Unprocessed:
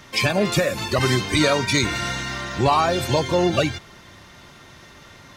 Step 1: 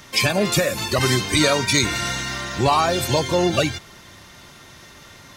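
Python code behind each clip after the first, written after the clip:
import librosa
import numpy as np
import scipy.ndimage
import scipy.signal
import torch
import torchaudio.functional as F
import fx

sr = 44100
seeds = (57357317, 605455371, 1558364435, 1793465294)

y = fx.high_shelf(x, sr, hz=5500.0, db=8.5)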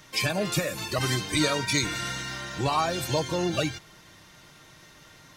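y = x + 0.36 * np.pad(x, (int(6.4 * sr / 1000.0), 0))[:len(x)]
y = F.gain(torch.from_numpy(y), -8.0).numpy()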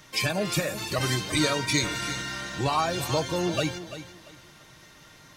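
y = fx.echo_feedback(x, sr, ms=341, feedback_pct=26, wet_db=-12.5)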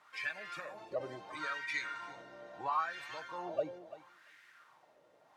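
y = fx.quant_dither(x, sr, seeds[0], bits=8, dither='triangular')
y = fx.wah_lfo(y, sr, hz=0.74, low_hz=540.0, high_hz=1900.0, q=3.6)
y = F.gain(torch.from_numpy(y), -3.0).numpy()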